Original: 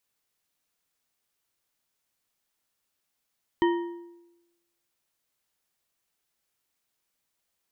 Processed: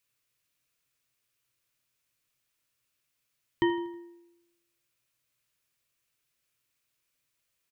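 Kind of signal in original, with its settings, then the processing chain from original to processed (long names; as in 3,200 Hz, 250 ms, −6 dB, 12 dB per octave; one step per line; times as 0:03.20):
struck metal bar, lowest mode 344 Hz, modes 4, decay 1.00 s, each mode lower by 6 dB, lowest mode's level −18 dB
thirty-one-band graphic EQ 125 Hz +11 dB, 200 Hz −6 dB, 400 Hz −3 dB, 800 Hz −11 dB, 2,500 Hz +5 dB
repeating echo 80 ms, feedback 53%, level −18 dB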